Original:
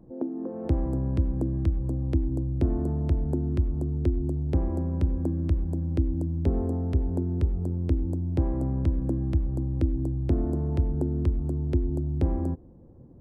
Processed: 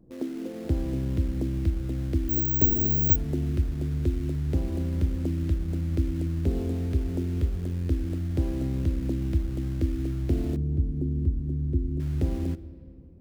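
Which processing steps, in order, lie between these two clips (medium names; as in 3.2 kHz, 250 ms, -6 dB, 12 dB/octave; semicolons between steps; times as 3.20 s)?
in parallel at -7.5 dB: word length cut 6-bit, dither none; on the sum: peaking EQ 900 Hz -7 dB 0.96 oct; on a send at -15 dB: reverberation RT60 2.5 s, pre-delay 3 ms; 2.29–3.16 s: on the sum: careless resampling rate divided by 2×, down filtered, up zero stuff; 10.56–12.00 s: FFT filter 290 Hz 0 dB, 690 Hz -15 dB, 2.1 kHz -20 dB; trim -4 dB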